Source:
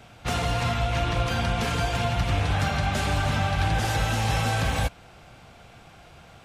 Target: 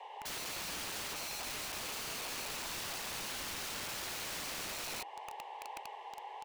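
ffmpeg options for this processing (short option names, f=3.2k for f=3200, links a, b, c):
-filter_complex "[0:a]asplit=3[a][b][c];[a]bandpass=f=530:t=q:w=8,volume=0dB[d];[b]bandpass=f=1.84k:t=q:w=8,volume=-6dB[e];[c]bandpass=f=2.48k:t=q:w=8,volume=-9dB[f];[d][e][f]amix=inputs=3:normalize=0,asoftclip=type=tanh:threshold=-31.5dB,asettb=1/sr,asplit=3[g][h][i];[g]atrim=end=1.144[j];[h]atrim=start=1.14:end=3.26,asetpts=PTS-STARTPTS,afade=t=in:d=0.004:c=qsin,afade=t=out:st=2.116:d=0.004:c=qsin,highpass=f=420:p=1[k];[i]atrim=start=3.256[l];[j][k]acrossfade=d=0.004:c1=hsin:c2=qsin[m];[m][l]acrossfade=d=0.004:c1=qsin:c2=hsin,aecho=1:1:47|61|115|153:0.1|0.158|0.562|0.422,alimiter=level_in=11dB:limit=-24dB:level=0:latency=1:release=54,volume=-11dB,acompressor=threshold=-47dB:ratio=6,equalizer=f=2.7k:w=0.42:g=-11,afreqshift=310,aeval=exprs='(mod(531*val(0)+1,2)-1)/531':c=same,volume=18dB"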